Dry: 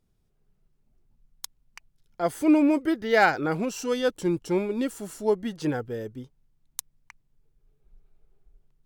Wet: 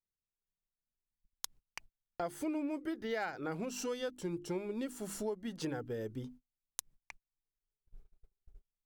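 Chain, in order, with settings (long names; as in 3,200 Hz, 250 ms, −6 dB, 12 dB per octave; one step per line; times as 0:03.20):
mains-hum notches 50/100/150/200/250/300/350 Hz
noise gate −53 dBFS, range −31 dB
downward compressor 6 to 1, threshold −37 dBFS, peak gain reduction 20.5 dB
level +1 dB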